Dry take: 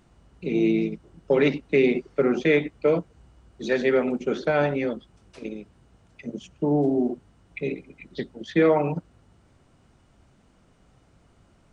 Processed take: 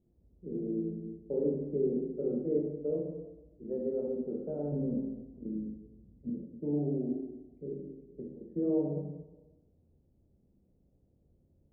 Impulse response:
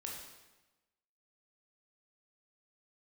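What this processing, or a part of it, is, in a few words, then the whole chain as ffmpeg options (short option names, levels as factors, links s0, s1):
next room: -filter_complex "[0:a]asettb=1/sr,asplit=3[s0][s1][s2];[s0]atrim=end=4.724[s3];[s1]atrim=start=4.72:end=6.3,asetpts=PTS-STARTPTS,afade=t=in:d=0.004:c=qsin,afade=t=out:st=1.576:d=0.004:c=qsin,lowshelf=f=320:t=q:w=1.5:g=7.5[s4];[s2]atrim=start=6.296[s5];[s3][s4]acrossfade=d=0.004:c1=hsin:c2=qsin[s6];[s6][s5]acrossfade=d=0.004:c1=qsin:c2=hsin,lowpass=f=520:w=0.5412,lowpass=f=520:w=1.3066[s7];[1:a]atrim=start_sample=2205[s8];[s7][s8]afir=irnorm=-1:irlink=0,volume=0.398"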